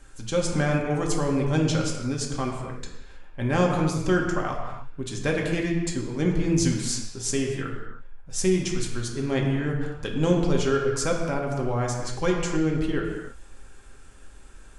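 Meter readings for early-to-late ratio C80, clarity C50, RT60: 4.5 dB, 3.0 dB, no single decay rate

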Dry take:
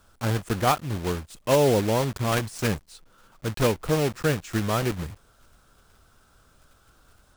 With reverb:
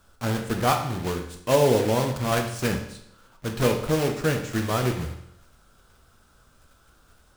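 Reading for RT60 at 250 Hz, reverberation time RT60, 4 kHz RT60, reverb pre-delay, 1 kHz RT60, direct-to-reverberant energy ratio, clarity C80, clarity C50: 0.75 s, 0.75 s, 0.70 s, 10 ms, 0.75 s, 3.5 dB, 10.5 dB, 8.0 dB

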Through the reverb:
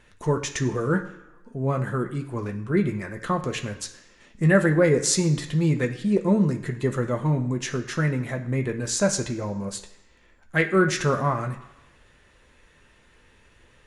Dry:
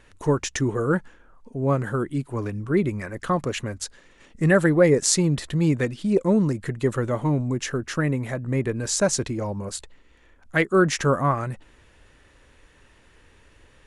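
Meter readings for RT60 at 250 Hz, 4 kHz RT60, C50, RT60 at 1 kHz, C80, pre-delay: 0.95 s, 1.0 s, 11.0 dB, 1.0 s, 14.0 dB, 3 ms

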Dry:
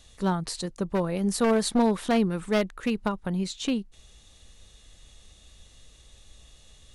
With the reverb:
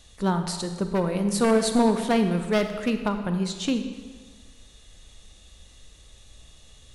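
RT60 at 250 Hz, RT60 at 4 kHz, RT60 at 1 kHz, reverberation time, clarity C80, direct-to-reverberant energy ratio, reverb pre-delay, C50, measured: 1.5 s, 1.2 s, 1.5 s, 1.5 s, 9.0 dB, 7.0 dB, 32 ms, 8.0 dB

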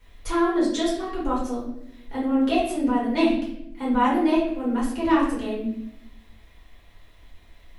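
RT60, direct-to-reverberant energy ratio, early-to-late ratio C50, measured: 0.75 s, -8.0 dB, 2.5 dB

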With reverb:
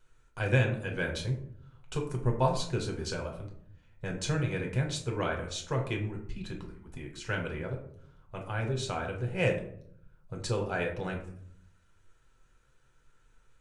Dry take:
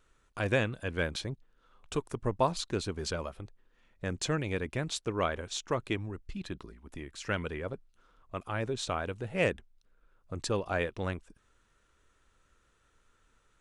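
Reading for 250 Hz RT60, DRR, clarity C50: 0.90 s, 0.5 dB, 8.0 dB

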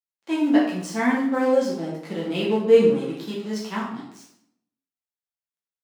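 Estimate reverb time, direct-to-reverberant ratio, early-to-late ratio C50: 0.70 s, -6.5 dB, 3.5 dB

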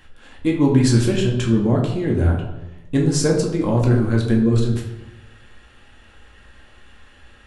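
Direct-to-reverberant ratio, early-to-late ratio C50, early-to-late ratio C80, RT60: -2.0 dB, 5.0 dB, 8.0 dB, 0.95 s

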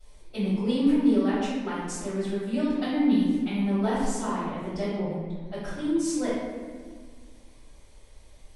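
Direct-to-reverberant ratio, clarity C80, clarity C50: -16.5 dB, 1.0 dB, -2.0 dB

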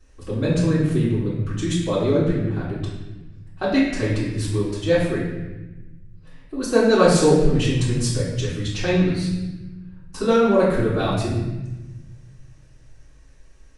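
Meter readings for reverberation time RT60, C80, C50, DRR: 1.1 s, 3.5 dB, 1.5 dB, -11.5 dB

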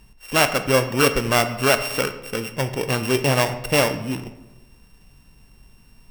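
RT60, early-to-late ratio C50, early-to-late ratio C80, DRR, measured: 1.0 s, 11.5 dB, 13.5 dB, 8.5 dB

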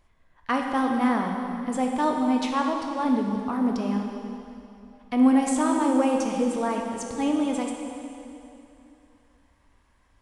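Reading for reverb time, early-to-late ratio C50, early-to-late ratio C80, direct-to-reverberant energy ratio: 2.9 s, 3.0 dB, 4.0 dB, 1.5 dB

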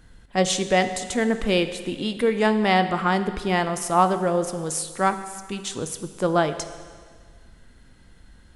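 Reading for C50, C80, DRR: 11.0 dB, 12.0 dB, 9.5 dB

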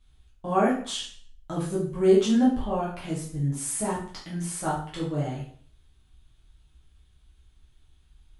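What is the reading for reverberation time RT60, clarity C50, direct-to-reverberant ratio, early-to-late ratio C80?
0.50 s, 4.5 dB, -7.5 dB, 9.5 dB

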